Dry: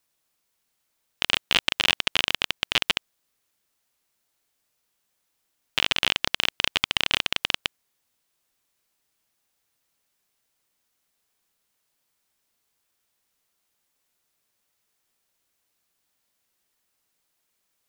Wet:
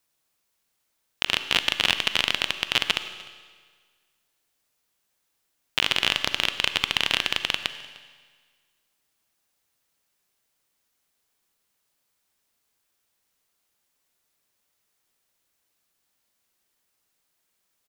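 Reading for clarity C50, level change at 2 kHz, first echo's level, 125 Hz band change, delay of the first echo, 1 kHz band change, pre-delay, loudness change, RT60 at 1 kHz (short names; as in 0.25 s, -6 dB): 10.5 dB, +0.5 dB, -23.0 dB, 0.0 dB, 0.302 s, +0.5 dB, 38 ms, +0.5 dB, 1.6 s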